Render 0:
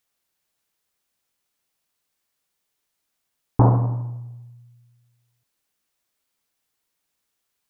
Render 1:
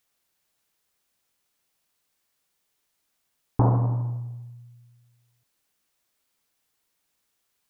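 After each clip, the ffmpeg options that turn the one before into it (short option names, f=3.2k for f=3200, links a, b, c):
-af "alimiter=limit=-11.5dB:level=0:latency=1:release=454,volume=2dB"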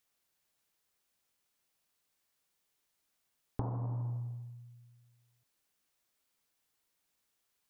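-af "acompressor=threshold=-28dB:ratio=10,volume=-5dB"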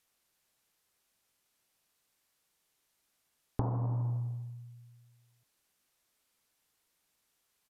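-af "aresample=32000,aresample=44100,volume=4dB"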